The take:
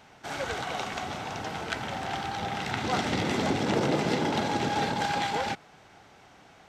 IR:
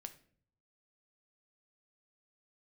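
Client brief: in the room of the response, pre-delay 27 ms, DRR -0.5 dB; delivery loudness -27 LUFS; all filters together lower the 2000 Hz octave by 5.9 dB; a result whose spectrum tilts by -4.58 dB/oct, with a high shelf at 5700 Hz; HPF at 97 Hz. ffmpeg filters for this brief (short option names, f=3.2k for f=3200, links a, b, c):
-filter_complex "[0:a]highpass=97,equalizer=f=2k:t=o:g=-8.5,highshelf=f=5.7k:g=4.5,asplit=2[a][b];[1:a]atrim=start_sample=2205,adelay=27[c];[b][c]afir=irnorm=-1:irlink=0,volume=5.5dB[d];[a][d]amix=inputs=2:normalize=0,volume=0.5dB"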